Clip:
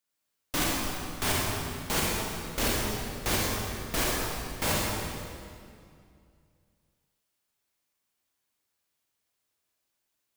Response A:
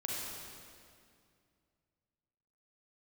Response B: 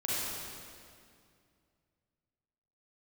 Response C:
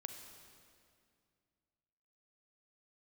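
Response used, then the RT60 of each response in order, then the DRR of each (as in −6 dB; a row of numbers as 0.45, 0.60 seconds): A; 2.3, 2.3, 2.3 seconds; −4.5, −8.5, 5.5 decibels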